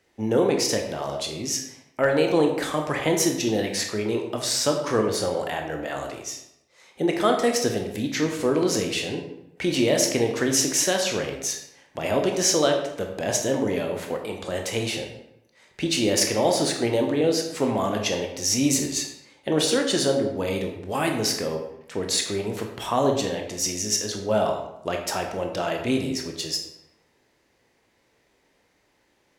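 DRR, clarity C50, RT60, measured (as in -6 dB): 2.5 dB, 6.0 dB, 0.85 s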